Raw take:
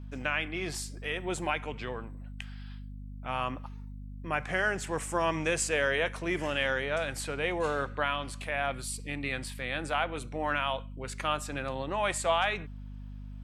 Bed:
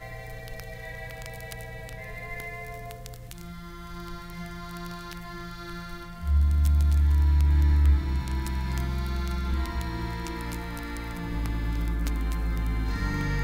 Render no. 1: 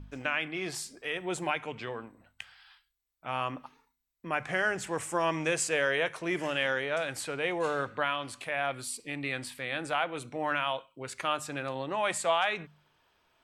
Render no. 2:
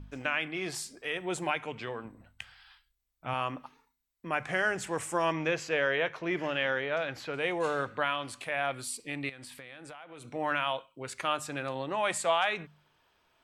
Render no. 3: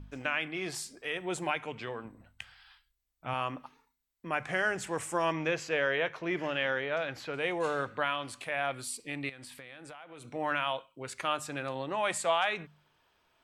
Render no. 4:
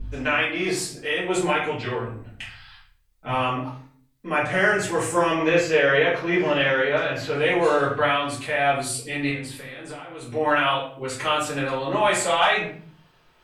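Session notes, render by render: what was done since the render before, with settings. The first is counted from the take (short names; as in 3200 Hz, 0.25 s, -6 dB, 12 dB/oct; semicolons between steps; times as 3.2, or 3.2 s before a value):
de-hum 50 Hz, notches 5
2.05–3.34 low shelf 210 Hz +10 dB; 5.32–7.34 running mean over 5 samples; 9.29–10.32 compressor 16:1, threshold -42 dBFS
gain -1 dB
shoebox room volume 49 m³, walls mixed, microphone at 2.2 m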